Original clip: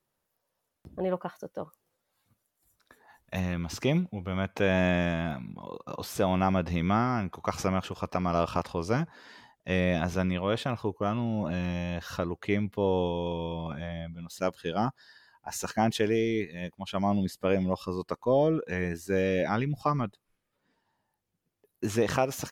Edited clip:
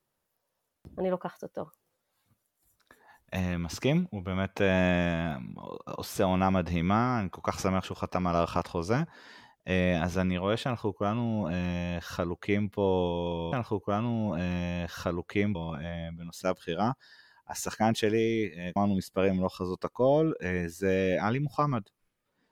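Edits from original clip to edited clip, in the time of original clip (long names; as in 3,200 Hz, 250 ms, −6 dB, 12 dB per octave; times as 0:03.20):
0:10.65–0:12.68: duplicate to 0:13.52
0:16.73–0:17.03: remove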